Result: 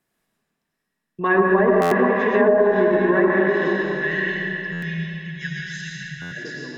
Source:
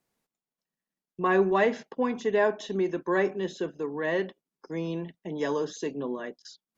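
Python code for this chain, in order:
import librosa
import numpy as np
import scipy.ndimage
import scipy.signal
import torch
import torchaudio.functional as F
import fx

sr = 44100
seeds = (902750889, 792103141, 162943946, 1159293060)

y = fx.graphic_eq_31(x, sr, hz=(500, 800, 6300), db=(-5, -3, -5))
y = y + 10.0 ** (-12.5 / 20.0) * np.pad(y, (int(615 * sr / 1000.0), 0))[:len(y)]
y = fx.spec_erase(y, sr, start_s=3.75, length_s=2.53, low_hz=210.0, high_hz=1400.0)
y = fx.peak_eq(y, sr, hz=1700.0, db=6.5, octaves=0.21)
y = fx.notch(y, sr, hz=4500.0, q=12.0)
y = fx.rev_freeverb(y, sr, rt60_s=3.2, hf_ratio=0.75, predelay_ms=55, drr_db=-4.5)
y = fx.env_lowpass_down(y, sr, base_hz=490.0, full_db=-13.0)
y = fx.buffer_glitch(y, sr, at_s=(1.81, 4.72, 6.21), block=512, repeats=8)
y = y * 10.0 ** (4.5 / 20.0)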